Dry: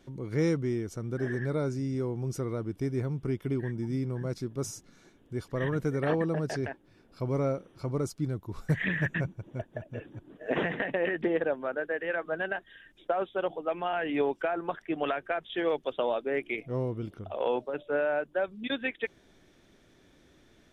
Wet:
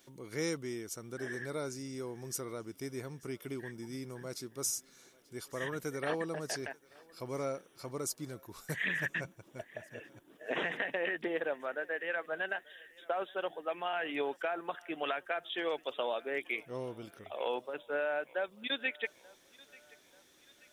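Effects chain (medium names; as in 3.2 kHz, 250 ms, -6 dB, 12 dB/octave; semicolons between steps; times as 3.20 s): RIAA curve recording; thinning echo 885 ms, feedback 54%, level -23 dB; trim -4 dB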